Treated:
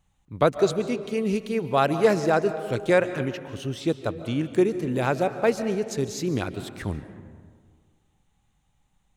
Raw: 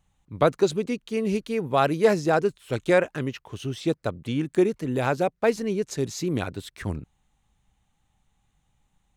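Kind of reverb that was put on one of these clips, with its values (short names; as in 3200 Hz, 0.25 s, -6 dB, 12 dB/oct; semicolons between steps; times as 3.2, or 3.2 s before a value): digital reverb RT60 1.8 s, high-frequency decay 0.45×, pre-delay 0.105 s, DRR 11 dB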